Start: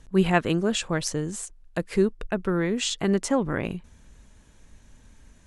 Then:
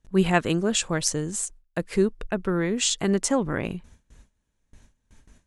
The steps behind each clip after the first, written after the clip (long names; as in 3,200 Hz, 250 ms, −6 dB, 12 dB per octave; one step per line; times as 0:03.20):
noise gate with hold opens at −41 dBFS
dynamic equaliser 7,900 Hz, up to +7 dB, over −44 dBFS, Q 0.78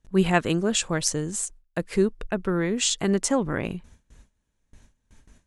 no processing that can be heard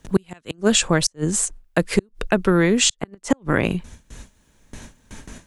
gate with flip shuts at −12 dBFS, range −40 dB
multiband upward and downward compressor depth 40%
level +8.5 dB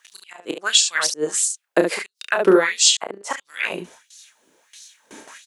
on a send: ambience of single reflections 31 ms −6 dB, 71 ms −7 dB
on the sum: auto-filter high-pass sine 1.5 Hz 330–4,800 Hz
level −1 dB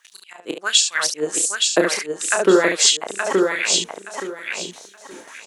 repeating echo 872 ms, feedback 23%, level −4 dB